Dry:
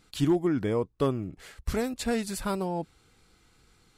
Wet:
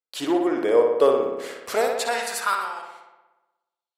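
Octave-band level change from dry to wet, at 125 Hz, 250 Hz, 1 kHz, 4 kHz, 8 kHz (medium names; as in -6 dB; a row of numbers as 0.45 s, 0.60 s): under -15 dB, 0.0 dB, +10.5 dB, +7.5 dB, +7.0 dB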